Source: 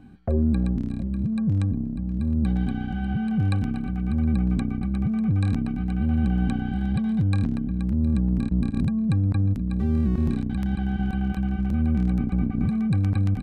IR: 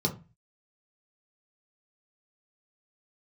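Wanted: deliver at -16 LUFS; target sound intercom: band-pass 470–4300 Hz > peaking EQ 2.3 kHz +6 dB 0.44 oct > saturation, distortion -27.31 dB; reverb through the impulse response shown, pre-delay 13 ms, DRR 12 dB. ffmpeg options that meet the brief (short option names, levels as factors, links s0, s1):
-filter_complex "[0:a]asplit=2[s0][s1];[1:a]atrim=start_sample=2205,adelay=13[s2];[s1][s2]afir=irnorm=-1:irlink=0,volume=0.106[s3];[s0][s3]amix=inputs=2:normalize=0,highpass=470,lowpass=4300,equalizer=f=2300:t=o:w=0.44:g=6,asoftclip=threshold=0.0708,volume=11.9"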